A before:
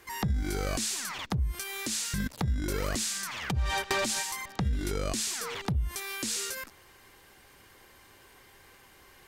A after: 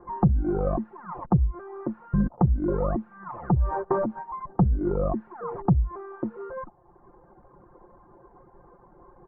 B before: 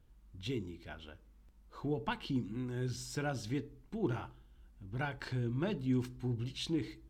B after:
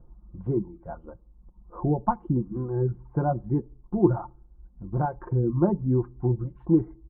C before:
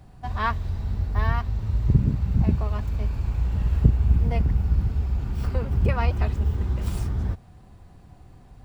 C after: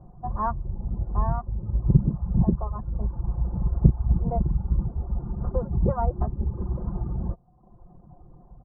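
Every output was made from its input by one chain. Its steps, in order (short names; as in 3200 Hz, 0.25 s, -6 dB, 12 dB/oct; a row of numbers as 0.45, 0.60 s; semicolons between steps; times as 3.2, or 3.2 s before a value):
reverb removal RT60 0.92 s; steep low-pass 1100 Hz 36 dB/oct; comb 5.7 ms, depth 57%; match loudness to -27 LUFS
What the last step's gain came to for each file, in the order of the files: +8.5, +12.5, +1.0 dB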